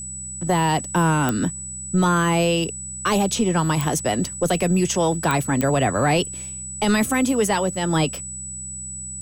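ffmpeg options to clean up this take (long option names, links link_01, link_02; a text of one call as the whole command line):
ffmpeg -i in.wav -af "adeclick=threshold=4,bandreject=frequency=64.1:width_type=h:width=4,bandreject=frequency=128.2:width_type=h:width=4,bandreject=frequency=192.3:width_type=h:width=4,bandreject=frequency=7900:width=30" out.wav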